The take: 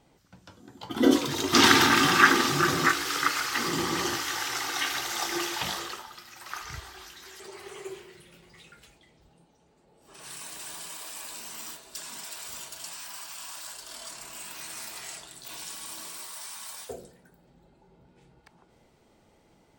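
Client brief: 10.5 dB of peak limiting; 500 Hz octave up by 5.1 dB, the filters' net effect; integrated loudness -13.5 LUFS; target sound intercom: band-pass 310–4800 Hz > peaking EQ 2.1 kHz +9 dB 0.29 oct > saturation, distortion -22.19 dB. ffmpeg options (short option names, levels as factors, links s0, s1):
-af "equalizer=f=500:t=o:g=9,alimiter=limit=0.266:level=0:latency=1,highpass=310,lowpass=4800,equalizer=f=2100:t=o:w=0.29:g=9,asoftclip=threshold=0.251,volume=4.22"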